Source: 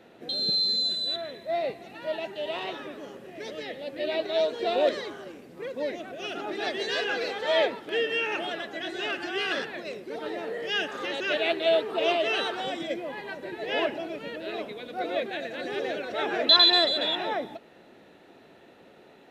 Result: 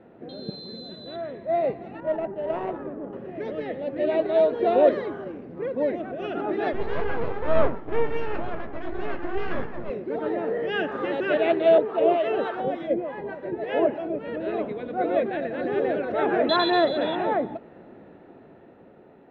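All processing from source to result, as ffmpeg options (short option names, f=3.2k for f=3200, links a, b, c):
-filter_complex "[0:a]asettb=1/sr,asplit=3[a][b][c];[a]atrim=end=2.004[d];[b]atrim=start=2:end=3.13,asetpts=PTS-STARTPTS,afade=t=in:d=0.004:c=qsin,afade=t=out:st=1.126:d=0.004:c=qsin,bandreject=f=60:t=h:w=6,bandreject=f=120:t=h:w=6,bandreject=f=180:t=h:w=6,bandreject=f=240:t=h:w=6,bandreject=f=300:t=h:w=6,bandreject=f=360:t=h:w=6,bandreject=f=420:t=h:w=6,bandreject=f=480:t=h:w=6,bandreject=f=540:t=h:w=6,bandreject=f=600:t=h:w=6,adynamicsmooth=sensitivity=2.5:basefreq=860[e];[c]atrim=start=3.126[f];[d][e]acrossfade=d=0.004:c1=hsin:c2=qsin[g];[g][f]acrossfade=d=0.004:c1=qsin:c2=hsin,asettb=1/sr,asplit=3[h][i][j];[h]atrim=end=6.734[k];[i]atrim=start=6.73:end=9.9,asetpts=PTS-STARTPTS,afade=t=in:d=0.004:c=qsin,afade=t=out:st=3.166:d=0.004:c=qsin,aemphasis=mode=reproduction:type=75fm,aeval=exprs='max(val(0),0)':c=same,asplit=2[l][m];[m]adelay=17,volume=-11dB[n];[l][n]amix=inputs=2:normalize=0,atrim=end_sample=139797[o];[j]atrim=start=9.896[p];[k][o]acrossfade=d=0.004:c1=hsin:c2=qsin[q];[q][p]acrossfade=d=0.004:c1=qsin:c2=hsin,asettb=1/sr,asplit=3[r][s][t];[r]atrim=end=11.784[u];[s]atrim=start=11.78:end=14.28,asetpts=PTS-STARTPTS,afade=t=in:d=0.004:c=qsin,afade=t=out:st=2.496:d=0.004:c=qsin,equalizer=f=540:w=1.9:g=3.5,acrossover=split=800[v][w];[v]aeval=exprs='val(0)*(1-0.7/2+0.7/2*cos(2*PI*3.4*n/s))':c=same[x];[w]aeval=exprs='val(0)*(1-0.7/2-0.7/2*cos(2*PI*3.4*n/s))':c=same[y];[x][y]amix=inputs=2:normalize=0[z];[t]atrim=start=14.276[aa];[u][z]acrossfade=d=0.004:c1=hsin:c2=qsin[ab];[ab][aa]acrossfade=d=0.004:c1=qsin:c2=hsin,lowpass=1.5k,lowshelf=f=350:g=7,dynaudnorm=f=240:g=11:m=4.5dB"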